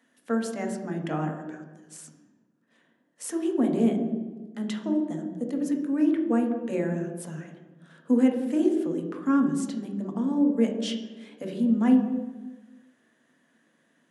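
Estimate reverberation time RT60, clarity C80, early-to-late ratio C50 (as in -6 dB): 1.3 s, 8.0 dB, 5.5 dB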